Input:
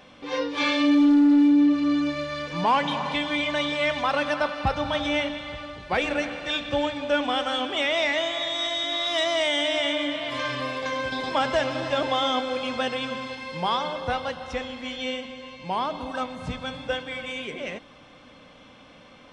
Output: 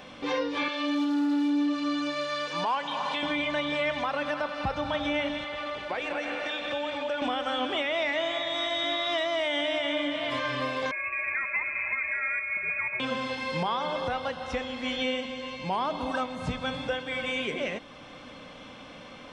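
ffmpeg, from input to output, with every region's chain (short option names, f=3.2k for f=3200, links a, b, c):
-filter_complex "[0:a]asettb=1/sr,asplit=3[a][b][c];[a]atrim=end=0.684[d];[b]atrim=start=0.68:end=3.23,asetpts=PTS-STARTPTS,afade=t=in:d=0.004:c=qsin,afade=t=out:st=2.546:d=0.004:c=qsin,highpass=f=860:p=1,equalizer=f=2.1k:t=o:w=0.43:g=-6.5[e];[c]atrim=start=3.226[f];[d][e]acrossfade=d=0.004:c1=hsin:c2=qsin[g];[g][f]acrossfade=d=0.004:c1=qsin:c2=hsin,asettb=1/sr,asplit=3[h][i][j];[h]atrim=end=5.444[k];[i]atrim=start=5.44:end=7.22,asetpts=PTS-STARTPTS,afade=t=in:d=0.004:c=qsin,afade=t=out:st=1.776:d=0.004:c=qsin,bass=f=250:g=-13,treble=f=4k:g=-6,acompressor=threshold=-34dB:ratio=5:attack=3.2:release=140:knee=1:detection=peak,aecho=1:1:216:0.501,atrim=end_sample=78498[l];[j]atrim=start=7.216[m];[k][l]acrossfade=d=0.004:c1=hsin:c2=qsin[n];[n][m]acrossfade=d=0.004:c1=qsin:c2=hsin,asettb=1/sr,asplit=3[o][p][q];[o]atrim=end=10.914[r];[p]atrim=start=10.91:end=13,asetpts=PTS-STARTPTS,afade=t=in:d=0.004:c=qsin,afade=t=out:st=2.086:d=0.004:c=qsin,equalizer=f=1.6k:w=0.41:g=-8.5,lowpass=f=2.3k:t=q:w=0.5098,lowpass=f=2.3k:t=q:w=0.6013,lowpass=f=2.3k:t=q:w=0.9,lowpass=f=2.3k:t=q:w=2.563,afreqshift=-2700[s];[q]atrim=start=12.996[t];[r][s]acrossfade=d=0.004:c1=hsin:c2=qsin[u];[u][t]acrossfade=d=0.004:c1=qsin:c2=hsin,acrossover=split=3400[v][w];[w]acompressor=threshold=-44dB:ratio=4:attack=1:release=60[x];[v][x]amix=inputs=2:normalize=0,equalizer=f=63:t=o:w=1.9:g=-2.5,alimiter=level_in=0.5dB:limit=-24dB:level=0:latency=1:release=448,volume=-0.5dB,volume=4.5dB"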